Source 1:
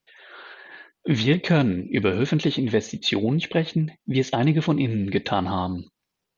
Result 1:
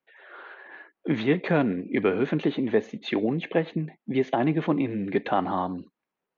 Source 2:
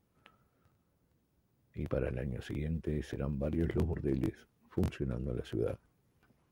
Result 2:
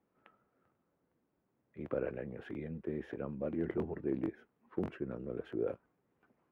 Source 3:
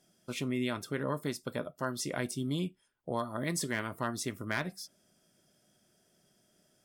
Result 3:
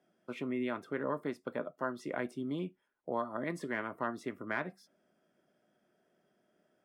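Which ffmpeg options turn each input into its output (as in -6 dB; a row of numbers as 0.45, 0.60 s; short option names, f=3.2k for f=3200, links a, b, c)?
-filter_complex "[0:a]acrossover=split=200 2400:gain=0.158 1 0.0891[a][b][c];[a][b][c]amix=inputs=3:normalize=0"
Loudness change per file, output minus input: -3.0, -3.5, -2.5 LU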